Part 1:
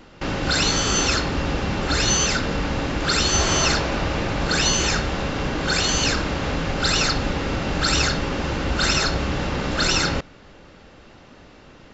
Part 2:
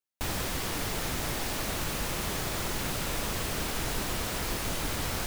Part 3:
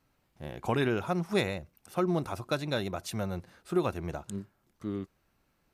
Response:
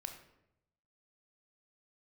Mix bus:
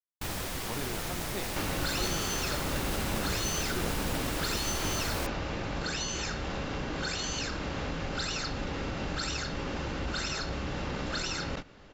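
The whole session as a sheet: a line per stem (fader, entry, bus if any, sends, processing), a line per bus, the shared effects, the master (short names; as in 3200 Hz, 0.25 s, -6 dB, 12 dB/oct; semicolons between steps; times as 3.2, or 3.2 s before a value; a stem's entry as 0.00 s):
-5.0 dB, 1.35 s, no send, compressor 6:1, threshold -26 dBFS, peak gain reduction 10.5 dB
-3.5 dB, 0.00 s, no send, dry
-12.0 dB, 0.00 s, no send, dry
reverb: off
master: gate -38 dBFS, range -42 dB; sustainer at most 48 dB/s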